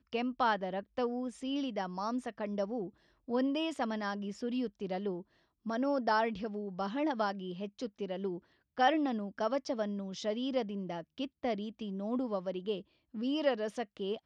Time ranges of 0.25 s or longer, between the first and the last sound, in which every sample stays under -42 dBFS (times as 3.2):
2.89–3.28
5.21–5.66
8.38–8.78
12.81–13.14